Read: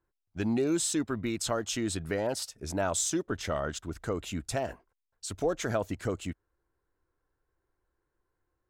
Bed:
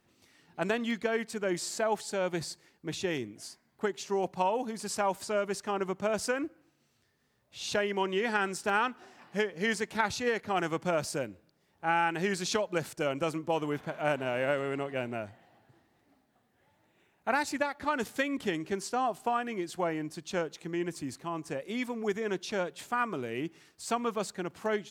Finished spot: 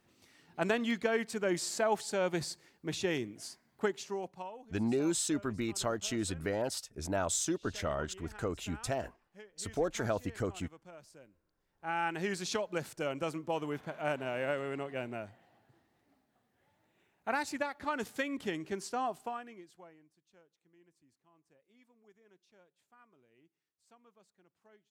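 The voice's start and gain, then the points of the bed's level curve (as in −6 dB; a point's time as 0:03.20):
4.35 s, −3.0 dB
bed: 0:03.90 −0.5 dB
0:04.74 −23 dB
0:11.20 −23 dB
0:12.07 −4.5 dB
0:19.12 −4.5 dB
0:20.17 −32.5 dB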